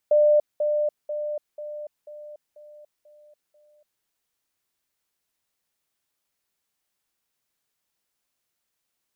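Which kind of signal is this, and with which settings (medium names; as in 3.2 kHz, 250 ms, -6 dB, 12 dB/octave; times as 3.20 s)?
level ladder 597 Hz -14 dBFS, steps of -6 dB, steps 8, 0.29 s 0.20 s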